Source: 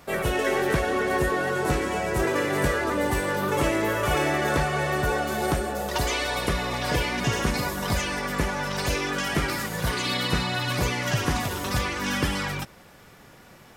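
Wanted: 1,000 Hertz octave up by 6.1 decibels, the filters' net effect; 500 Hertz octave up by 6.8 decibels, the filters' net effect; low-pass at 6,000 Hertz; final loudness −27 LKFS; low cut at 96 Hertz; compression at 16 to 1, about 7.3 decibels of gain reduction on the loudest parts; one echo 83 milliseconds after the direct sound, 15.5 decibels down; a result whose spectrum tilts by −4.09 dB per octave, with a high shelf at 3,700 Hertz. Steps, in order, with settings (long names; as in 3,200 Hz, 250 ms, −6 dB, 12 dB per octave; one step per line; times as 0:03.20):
high-pass filter 96 Hz
low-pass filter 6,000 Hz
parametric band 500 Hz +7 dB
parametric band 1,000 Hz +5 dB
high-shelf EQ 3,700 Hz +6 dB
downward compressor 16 to 1, threshold −22 dBFS
single-tap delay 83 ms −15.5 dB
level −1 dB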